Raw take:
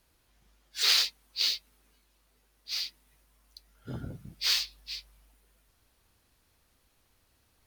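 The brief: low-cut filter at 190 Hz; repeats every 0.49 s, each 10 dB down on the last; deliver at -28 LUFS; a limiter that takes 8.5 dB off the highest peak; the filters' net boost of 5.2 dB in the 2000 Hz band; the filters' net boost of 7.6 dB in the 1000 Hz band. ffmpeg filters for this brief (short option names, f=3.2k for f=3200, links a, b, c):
-af "highpass=190,equalizer=f=1k:t=o:g=8.5,equalizer=f=2k:t=o:g=4.5,alimiter=limit=-17.5dB:level=0:latency=1,aecho=1:1:490|980|1470|1960:0.316|0.101|0.0324|0.0104,volume=3.5dB"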